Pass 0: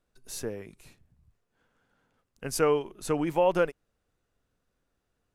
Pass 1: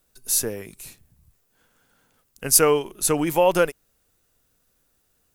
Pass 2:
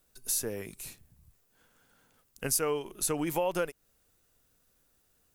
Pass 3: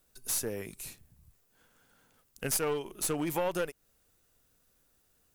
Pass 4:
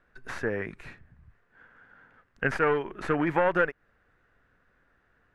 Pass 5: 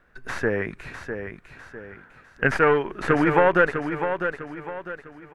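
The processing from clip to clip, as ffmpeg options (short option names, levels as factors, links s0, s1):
-af "aemphasis=mode=production:type=75fm,volume=2"
-af "acompressor=threshold=0.0447:ratio=3,volume=0.75"
-af "aeval=exprs='clip(val(0),-1,0.0316)':c=same"
-af "lowpass=f=1700:t=q:w=3.5,volume=1.88"
-af "aecho=1:1:652|1304|1956|2608:0.398|0.151|0.0575|0.0218,volume=2"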